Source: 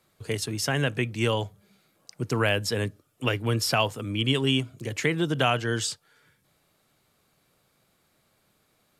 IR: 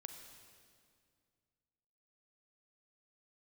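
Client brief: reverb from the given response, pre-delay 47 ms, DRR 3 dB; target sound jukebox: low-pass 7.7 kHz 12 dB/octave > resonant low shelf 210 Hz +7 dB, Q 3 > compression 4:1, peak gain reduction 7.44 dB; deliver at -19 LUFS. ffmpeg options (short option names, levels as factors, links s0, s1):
-filter_complex "[0:a]asplit=2[s0][s1];[1:a]atrim=start_sample=2205,adelay=47[s2];[s1][s2]afir=irnorm=-1:irlink=0,volume=1.19[s3];[s0][s3]amix=inputs=2:normalize=0,lowpass=7700,lowshelf=f=210:t=q:w=3:g=7,acompressor=threshold=0.112:ratio=4,volume=1.88"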